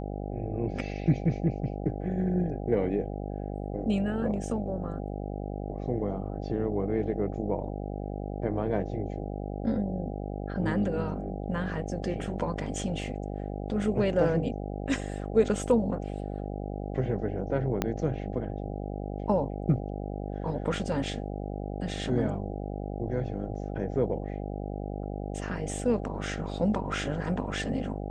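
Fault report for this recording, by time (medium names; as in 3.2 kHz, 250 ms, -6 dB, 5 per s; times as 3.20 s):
buzz 50 Hz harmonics 16 -35 dBFS
17.82 s: pop -12 dBFS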